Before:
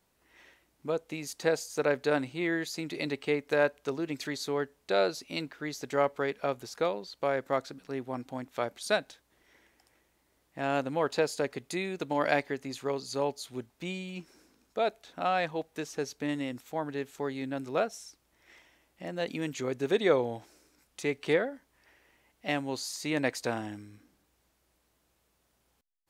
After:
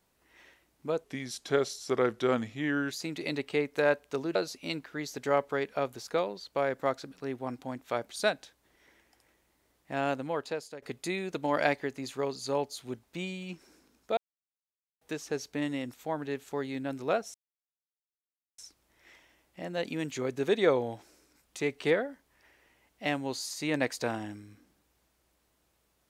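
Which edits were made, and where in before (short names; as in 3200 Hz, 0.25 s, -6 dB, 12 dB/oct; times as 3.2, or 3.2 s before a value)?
1.04–2.65 speed 86%
4.09–5.02 cut
10.65–11.49 fade out linear, to -17.5 dB
14.84–15.68 mute
18.01 insert silence 1.24 s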